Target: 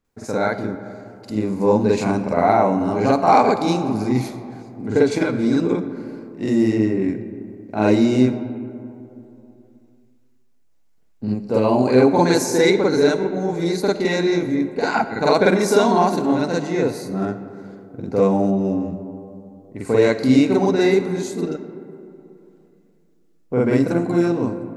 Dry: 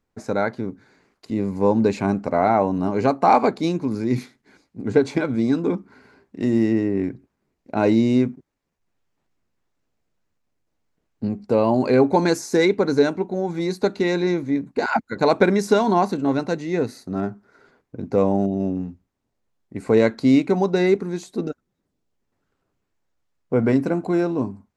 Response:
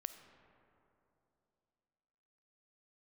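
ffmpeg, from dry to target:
-filter_complex "[0:a]asplit=2[a][b];[1:a]atrim=start_sample=2205,highshelf=f=4.9k:g=10,adelay=47[c];[b][c]afir=irnorm=-1:irlink=0,volume=6dB[d];[a][d]amix=inputs=2:normalize=0,volume=-2.5dB"

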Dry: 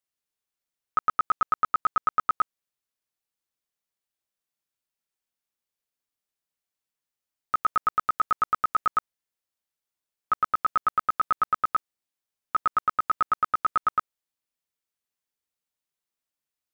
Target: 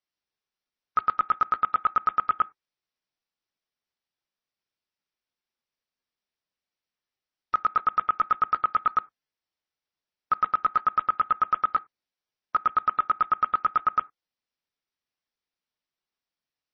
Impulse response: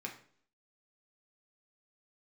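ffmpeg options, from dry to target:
-filter_complex "[0:a]asplit=2[a][b];[1:a]atrim=start_sample=2205,afade=t=out:st=0.15:d=0.01,atrim=end_sample=7056[c];[b][c]afir=irnorm=-1:irlink=0,volume=-15dB[d];[a][d]amix=inputs=2:normalize=0" -ar 24000 -c:a libmp3lame -b:a 24k

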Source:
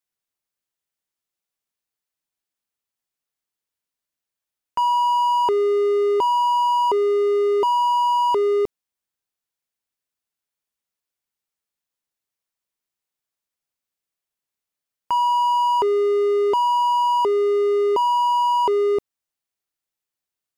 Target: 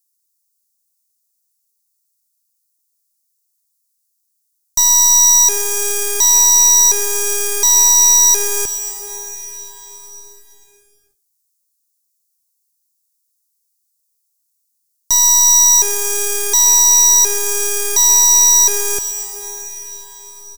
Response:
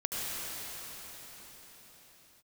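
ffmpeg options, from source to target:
-filter_complex "[0:a]aeval=exprs='0.211*(cos(1*acos(clip(val(0)/0.211,-1,1)))-cos(1*PI/2))+0.0473*(cos(4*acos(clip(val(0)/0.211,-1,1)))-cos(4*PI/2))+0.0944*(cos(8*acos(clip(val(0)/0.211,-1,1)))-cos(8*PI/2))':c=same,asplit=2[a][b];[b]adelay=90,highpass=300,lowpass=3.4k,asoftclip=type=hard:threshold=-16.5dB,volume=-16dB[c];[a][c]amix=inputs=2:normalize=0,asplit=2[d][e];[1:a]atrim=start_sample=2205,adelay=129[f];[e][f]afir=irnorm=-1:irlink=0,volume=-16.5dB[g];[d][g]amix=inputs=2:normalize=0,aexciter=amount=9.2:drive=9:freq=4.4k,volume=-8.5dB"

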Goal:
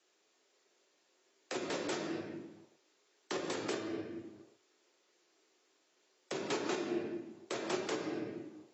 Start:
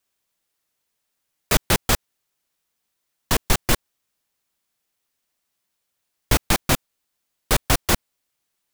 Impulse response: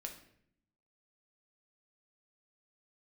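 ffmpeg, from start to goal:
-filter_complex "[0:a]afreqshift=93[a];[1:a]atrim=start_sample=2205[b];[a][b]afir=irnorm=-1:irlink=0,acompressor=threshold=-40dB:ratio=8,highpass=f=370:t=q:w=4.1,alimiter=level_in=9.5dB:limit=-24dB:level=0:latency=1:release=207,volume=-9.5dB,volume=9dB" -ar 22050 -c:a aac -b:a 24k

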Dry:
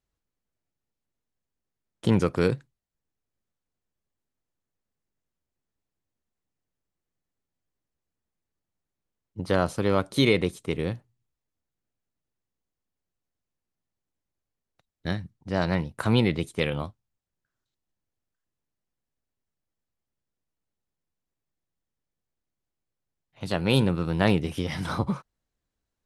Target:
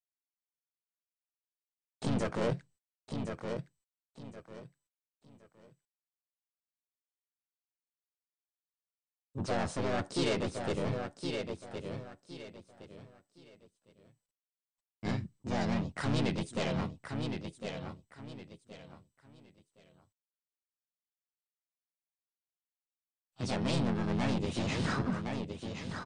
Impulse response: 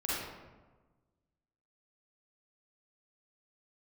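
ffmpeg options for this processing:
-filter_complex "[0:a]agate=range=-36dB:threshold=-53dB:ratio=16:detection=peak,asplit=2[a][b];[b]alimiter=limit=-18dB:level=0:latency=1:release=413,volume=-2.5dB[c];[a][c]amix=inputs=2:normalize=0,asoftclip=type=hard:threshold=-16dB,aecho=1:1:1065|2130|3195:0.316|0.0822|0.0214,asoftclip=type=tanh:threshold=-23dB,asplit=2[d][e];[e]asetrate=55563,aresample=44100,atempo=0.793701,volume=0dB[f];[d][f]amix=inputs=2:normalize=0,volume=-7dB" -ar 32000 -c:a mp2 -b:a 128k

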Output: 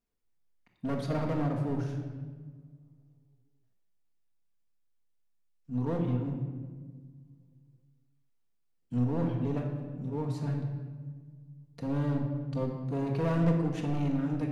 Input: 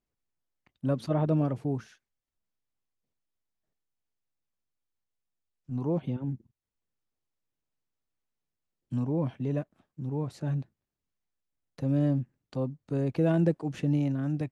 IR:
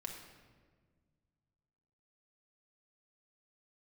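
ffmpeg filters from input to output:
-filter_complex "[0:a]acontrast=80,asoftclip=type=hard:threshold=-19.5dB[a];[1:a]atrim=start_sample=2205[b];[a][b]afir=irnorm=-1:irlink=0,volume=-4.5dB"

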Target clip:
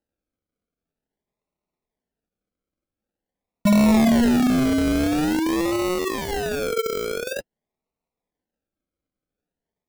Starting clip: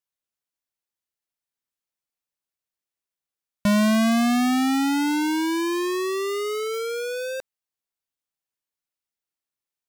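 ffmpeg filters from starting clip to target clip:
-filter_complex "[0:a]acrossover=split=270[a][b];[b]acrusher=samples=38:mix=1:aa=0.000001:lfo=1:lforange=22.8:lforate=0.47[c];[a][c]amix=inputs=2:normalize=0,flanger=delay=3.7:depth=1.2:regen=-41:speed=0.34:shape=sinusoidal,volume=6dB"

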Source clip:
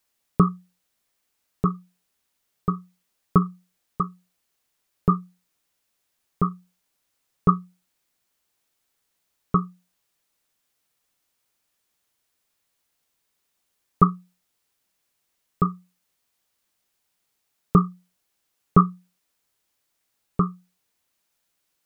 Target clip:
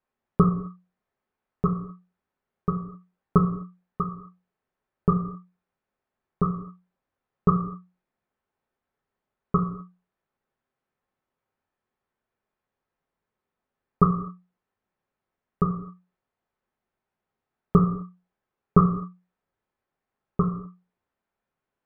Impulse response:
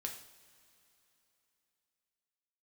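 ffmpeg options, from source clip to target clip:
-filter_complex "[0:a]lowpass=1.3k[a];[1:a]atrim=start_sample=2205,afade=t=out:st=0.32:d=0.01,atrim=end_sample=14553[b];[a][b]afir=irnorm=-1:irlink=0,volume=2dB"

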